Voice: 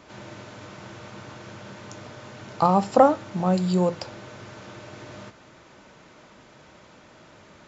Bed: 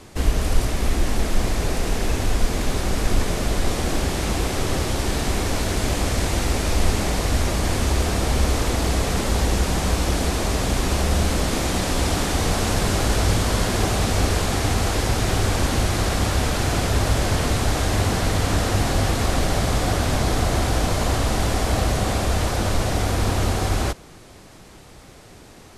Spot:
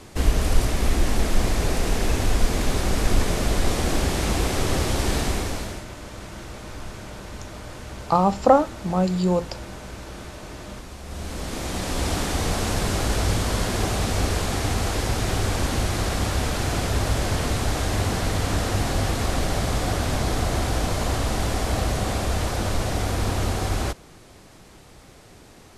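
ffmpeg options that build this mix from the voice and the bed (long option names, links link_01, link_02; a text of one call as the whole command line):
ffmpeg -i stem1.wav -i stem2.wav -filter_complex "[0:a]adelay=5500,volume=0.5dB[link_01];[1:a]volume=15dB,afade=type=out:start_time=5.16:duration=0.69:silence=0.125893,afade=type=in:start_time=11.03:duration=1.09:silence=0.177828[link_02];[link_01][link_02]amix=inputs=2:normalize=0" out.wav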